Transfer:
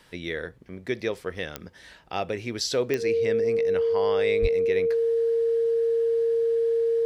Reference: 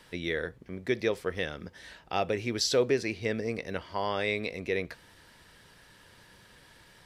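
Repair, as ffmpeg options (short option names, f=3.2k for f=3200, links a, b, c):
-filter_complex "[0:a]adeclick=t=4,bandreject=f=460:w=30,asplit=3[a][b][c];[a]afade=t=out:st=4.41:d=0.02[d];[b]highpass=f=140:w=0.5412,highpass=f=140:w=1.3066,afade=t=in:st=4.41:d=0.02,afade=t=out:st=4.53:d=0.02[e];[c]afade=t=in:st=4.53:d=0.02[f];[d][e][f]amix=inputs=3:normalize=0"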